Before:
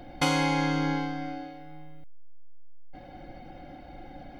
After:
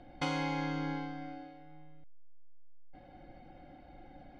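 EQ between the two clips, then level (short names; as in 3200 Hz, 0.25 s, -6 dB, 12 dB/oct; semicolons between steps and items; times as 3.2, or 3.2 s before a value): air absorption 91 m; -8.5 dB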